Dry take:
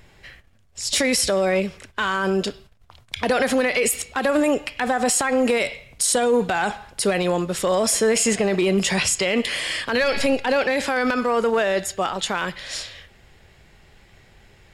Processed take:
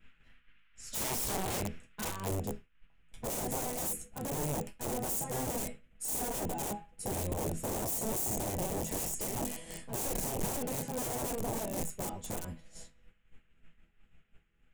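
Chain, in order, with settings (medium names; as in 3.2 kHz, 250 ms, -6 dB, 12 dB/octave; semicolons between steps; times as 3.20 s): octave divider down 1 oct, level +4 dB; tremolo 3.9 Hz, depth 48%; chord resonator E3 major, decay 0.25 s; band noise 1.3–3 kHz -56 dBFS; upward compressor, threshold -49 dBFS; bass shelf 220 Hz +8 dB; expander -40 dBFS; integer overflow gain 32 dB; high-order bell 2.4 kHz -8 dB 2.5 oct, from 2.27 s -15 dB; trim +5 dB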